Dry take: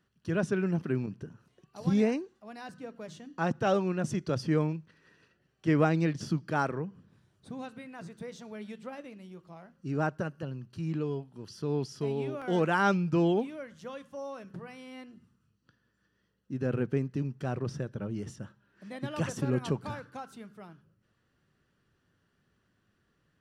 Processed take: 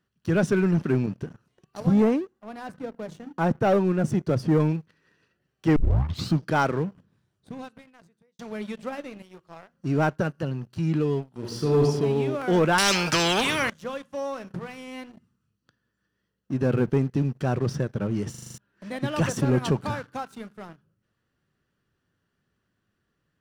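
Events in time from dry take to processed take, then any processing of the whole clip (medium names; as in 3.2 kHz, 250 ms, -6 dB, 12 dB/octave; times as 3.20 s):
1.80–4.60 s: peaking EQ 4.7 kHz -10 dB 2.6 oct
5.76 s: tape start 0.58 s
6.88–8.39 s: fade out
9.22–9.74 s: peaking EQ 220 Hz -11 dB 0.93 oct
11.33–11.83 s: reverb throw, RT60 0.94 s, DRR -2 dB
12.78–13.70 s: spectrum-flattening compressor 4:1
18.30 s: stutter in place 0.04 s, 7 plays
whole clip: waveshaping leveller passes 2; trim +1 dB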